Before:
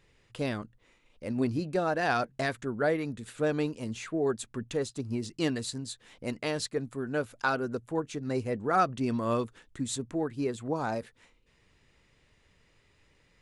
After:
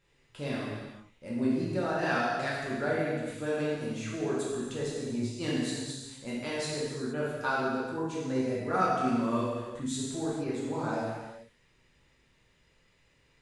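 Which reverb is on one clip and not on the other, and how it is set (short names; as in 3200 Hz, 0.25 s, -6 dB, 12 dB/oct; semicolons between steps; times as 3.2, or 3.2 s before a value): non-linear reverb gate 0.5 s falling, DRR -7 dB; gain -8 dB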